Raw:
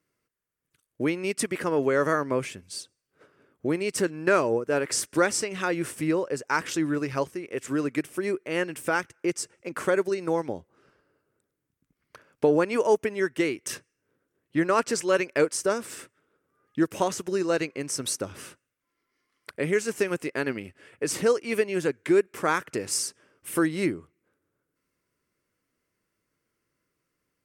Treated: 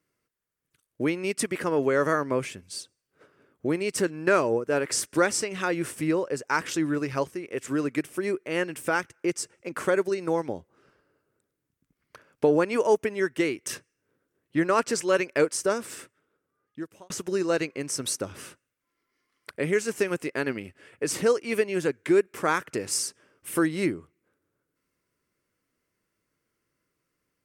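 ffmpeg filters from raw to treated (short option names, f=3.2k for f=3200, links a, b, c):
-filter_complex "[0:a]asplit=2[a][b];[a]atrim=end=17.1,asetpts=PTS-STARTPTS,afade=t=out:st=15.93:d=1.17[c];[b]atrim=start=17.1,asetpts=PTS-STARTPTS,afade=t=in:d=0.004:c=hsin[d];[c][d]concat=n=2:v=0:a=1"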